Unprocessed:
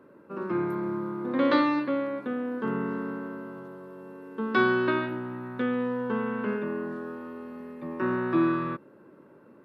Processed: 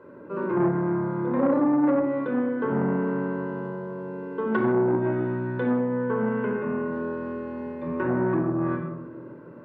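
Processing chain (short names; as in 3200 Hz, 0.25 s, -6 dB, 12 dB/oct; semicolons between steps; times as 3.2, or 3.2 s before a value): LPF 1600 Hz 6 dB/oct; treble ducked by the level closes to 560 Hz, closed at -22 dBFS; low shelf 360 Hz -3.5 dB; in parallel at -1 dB: compressor, threshold -36 dBFS, peak gain reduction 13 dB; on the sum: shoebox room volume 3400 m³, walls furnished, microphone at 4.9 m; core saturation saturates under 530 Hz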